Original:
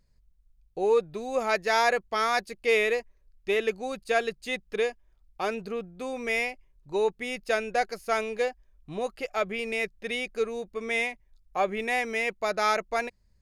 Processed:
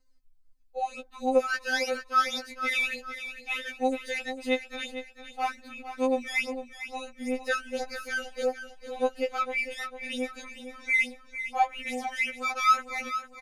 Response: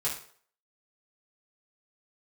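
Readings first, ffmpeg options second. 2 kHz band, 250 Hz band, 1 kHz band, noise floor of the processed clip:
0.0 dB, +2.0 dB, +0.5 dB, -56 dBFS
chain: -af "aecho=1:1:452|904|1356|1808:0.282|0.116|0.0474|0.0194,afftfilt=real='re*3.46*eq(mod(b,12),0)':imag='im*3.46*eq(mod(b,12),0)':win_size=2048:overlap=0.75,volume=1.5dB"

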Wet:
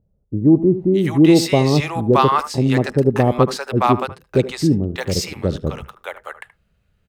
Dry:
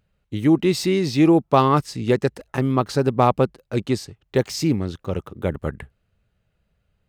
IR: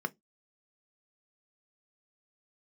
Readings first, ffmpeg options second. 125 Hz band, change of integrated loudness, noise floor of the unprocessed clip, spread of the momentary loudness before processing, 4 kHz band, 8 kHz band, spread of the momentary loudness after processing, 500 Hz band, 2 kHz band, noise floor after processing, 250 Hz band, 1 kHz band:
+4.5 dB, +4.0 dB, -72 dBFS, 11 LU, +4.5 dB, +4.5 dB, 15 LU, +3.5 dB, +4.5 dB, -65 dBFS, +4.0 dB, +3.0 dB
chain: -filter_complex "[0:a]acrossover=split=690[a][b];[b]adelay=620[c];[a][c]amix=inputs=2:normalize=0,asplit=2[d][e];[1:a]atrim=start_sample=2205,adelay=76[f];[e][f]afir=irnorm=-1:irlink=0,volume=-19dB[g];[d][g]amix=inputs=2:normalize=0,volume=4.5dB"

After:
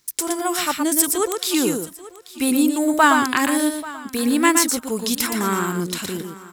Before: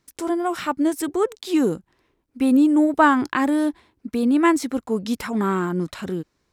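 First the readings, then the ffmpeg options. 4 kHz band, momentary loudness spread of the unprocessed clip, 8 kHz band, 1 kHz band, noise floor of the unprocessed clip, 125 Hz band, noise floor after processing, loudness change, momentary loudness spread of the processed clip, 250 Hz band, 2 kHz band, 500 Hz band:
+11.0 dB, 12 LU, +17.0 dB, +2.0 dB, -72 dBFS, -1.0 dB, -43 dBFS, +1.5 dB, 13 LU, -1.5 dB, +5.0 dB, -0.5 dB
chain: -filter_complex "[0:a]asplit=2[a][b];[b]aecho=0:1:118:0.531[c];[a][c]amix=inputs=2:normalize=0,crystalizer=i=7:c=0,asplit=2[d][e];[e]aecho=0:1:836|1672:0.119|0.0202[f];[d][f]amix=inputs=2:normalize=0,volume=-2.5dB"

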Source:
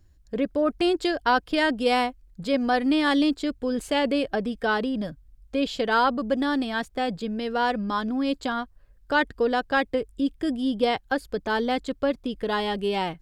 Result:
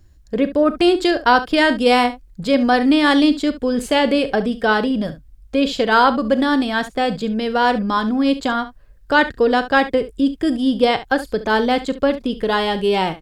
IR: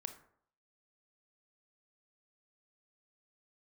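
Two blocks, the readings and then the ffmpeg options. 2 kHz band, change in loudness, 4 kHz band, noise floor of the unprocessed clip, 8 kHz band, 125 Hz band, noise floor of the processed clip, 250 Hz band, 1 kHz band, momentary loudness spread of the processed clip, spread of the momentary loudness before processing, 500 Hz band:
+7.5 dB, +8.0 dB, +7.5 dB, -56 dBFS, +7.5 dB, +7.5 dB, -48 dBFS, +8.0 dB, +7.5 dB, 7 LU, 7 LU, +7.5 dB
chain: -af "aecho=1:1:37|69:0.168|0.188,volume=7.5dB"

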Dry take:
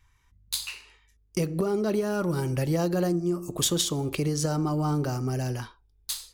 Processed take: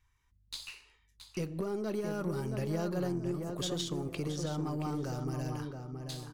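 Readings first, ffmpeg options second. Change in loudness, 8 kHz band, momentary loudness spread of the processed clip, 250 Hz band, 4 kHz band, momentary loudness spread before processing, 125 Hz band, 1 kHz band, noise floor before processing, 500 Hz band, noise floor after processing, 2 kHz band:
-8.5 dB, -14.5 dB, 9 LU, -7.5 dB, -9.5 dB, 9 LU, -8.0 dB, -8.0 dB, -64 dBFS, -8.0 dB, -70 dBFS, -8.0 dB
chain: -filter_complex "[0:a]asplit=2[a][b];[b]adelay=673,lowpass=f=1.9k:p=1,volume=-5dB,asplit=2[c][d];[d]adelay=673,lowpass=f=1.9k:p=1,volume=0.3,asplit=2[e][f];[f]adelay=673,lowpass=f=1.9k:p=1,volume=0.3,asplit=2[g][h];[h]adelay=673,lowpass=f=1.9k:p=1,volume=0.3[i];[c][e][g][i]amix=inputs=4:normalize=0[j];[a][j]amix=inputs=2:normalize=0,acrossover=split=6300[k][l];[l]acompressor=threshold=-45dB:ratio=4:attack=1:release=60[m];[k][m]amix=inputs=2:normalize=0,aeval=exprs='0.211*(cos(1*acos(clip(val(0)/0.211,-1,1)))-cos(1*PI/2))+0.00596*(cos(8*acos(clip(val(0)/0.211,-1,1)))-cos(8*PI/2))':c=same,volume=-9dB"

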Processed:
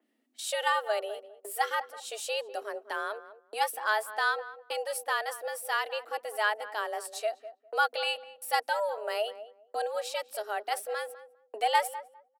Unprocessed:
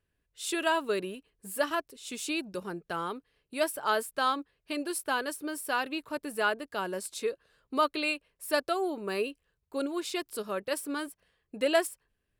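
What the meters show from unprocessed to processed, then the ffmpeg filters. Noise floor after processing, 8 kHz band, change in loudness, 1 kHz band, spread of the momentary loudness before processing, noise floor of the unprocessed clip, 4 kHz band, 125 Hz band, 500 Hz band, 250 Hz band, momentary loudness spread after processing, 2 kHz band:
-70 dBFS, -1.0 dB, 0.0 dB, +3.0 dB, 10 LU, -81 dBFS, +1.0 dB, under -40 dB, -1.5 dB, under -20 dB, 12 LU, +2.0 dB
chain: -filter_complex "[0:a]agate=range=-48dB:threshold=-52dB:ratio=16:detection=peak,acompressor=mode=upward:threshold=-38dB:ratio=2.5,afreqshift=210,asplit=2[a][b];[b]adelay=202,lowpass=f=1k:p=1,volume=-12dB,asplit=2[c][d];[d]adelay=202,lowpass=f=1k:p=1,volume=0.2,asplit=2[e][f];[f]adelay=202,lowpass=f=1k:p=1,volume=0.2[g];[a][c][e][g]amix=inputs=4:normalize=0,adynamicequalizer=threshold=0.00708:dfrequency=3300:dqfactor=0.7:tfrequency=3300:tqfactor=0.7:attack=5:release=100:ratio=0.375:range=2:mode=cutabove:tftype=highshelf"

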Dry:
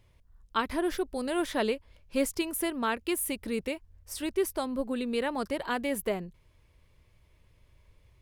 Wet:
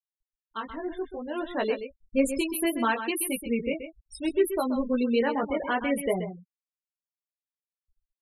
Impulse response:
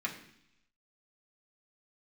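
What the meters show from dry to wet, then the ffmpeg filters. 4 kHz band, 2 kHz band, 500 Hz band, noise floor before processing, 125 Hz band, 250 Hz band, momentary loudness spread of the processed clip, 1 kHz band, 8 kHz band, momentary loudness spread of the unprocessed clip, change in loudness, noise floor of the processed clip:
-0.5 dB, +2.5 dB, +3.5 dB, -63 dBFS, +3.5 dB, +4.0 dB, 10 LU, +2.5 dB, +1.0 dB, 7 LU, +3.0 dB, under -85 dBFS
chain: -filter_complex "[0:a]flanger=delay=15.5:depth=3.7:speed=0.62,afftfilt=real='re*gte(hypot(re,im),0.02)':imag='im*gte(hypot(re,im),0.02)':win_size=1024:overlap=0.75,dynaudnorm=f=440:g=7:m=11.5dB,asplit=2[a][b];[b]aecho=0:1:129:0.316[c];[a][c]amix=inputs=2:normalize=0,volume=-4.5dB"

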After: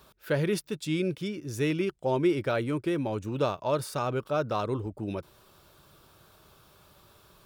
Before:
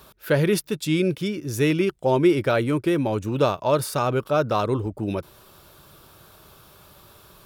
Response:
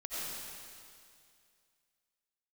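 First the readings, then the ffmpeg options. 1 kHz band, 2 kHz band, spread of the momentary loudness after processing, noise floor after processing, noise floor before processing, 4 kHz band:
-7.0 dB, -7.0 dB, 8 LU, -59 dBFS, -52 dBFS, -7.0 dB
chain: -af "equalizer=f=12k:t=o:w=0.33:g=-7,volume=-7dB"

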